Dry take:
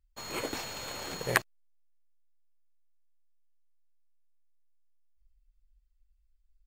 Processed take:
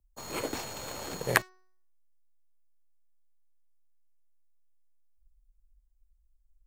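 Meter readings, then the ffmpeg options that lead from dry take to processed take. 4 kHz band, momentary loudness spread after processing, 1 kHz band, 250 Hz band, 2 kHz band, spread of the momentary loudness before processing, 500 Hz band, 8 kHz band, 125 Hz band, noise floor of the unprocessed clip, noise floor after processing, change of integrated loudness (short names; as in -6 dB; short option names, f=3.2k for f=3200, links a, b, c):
-1.0 dB, 10 LU, +1.5 dB, +2.0 dB, +1.0 dB, 8 LU, +2.0 dB, +1.5 dB, +2.0 dB, -71 dBFS, -69 dBFS, +1.0 dB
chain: -filter_complex "[0:a]bandreject=f=370.6:t=h:w=4,bandreject=f=741.2:t=h:w=4,bandreject=f=1.1118k:t=h:w=4,bandreject=f=1.4824k:t=h:w=4,bandreject=f=1.853k:t=h:w=4,bandreject=f=2.2236k:t=h:w=4,bandreject=f=2.5942k:t=h:w=4,bandreject=f=2.9648k:t=h:w=4,bandreject=f=3.3354k:t=h:w=4,bandreject=f=3.706k:t=h:w=4,bandreject=f=4.0766k:t=h:w=4,bandreject=f=4.4472k:t=h:w=4,bandreject=f=4.8178k:t=h:w=4,bandreject=f=5.1884k:t=h:w=4,bandreject=f=5.559k:t=h:w=4,bandreject=f=5.9296k:t=h:w=4,acrossover=split=100|1200|5800[a][b][c][d];[c]aeval=exprs='sgn(val(0))*max(abs(val(0))-0.00398,0)':c=same[e];[a][b][e][d]amix=inputs=4:normalize=0,volume=2dB"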